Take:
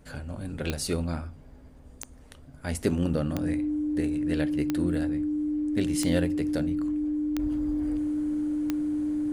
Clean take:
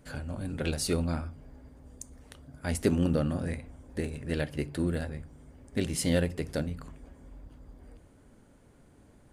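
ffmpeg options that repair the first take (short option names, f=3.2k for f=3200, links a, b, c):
-af "adeclick=t=4,bandreject=f=300:w=30,agate=range=-21dB:threshold=-41dB,asetnsamples=n=441:p=0,asendcmd='7.39 volume volume -11.5dB',volume=0dB"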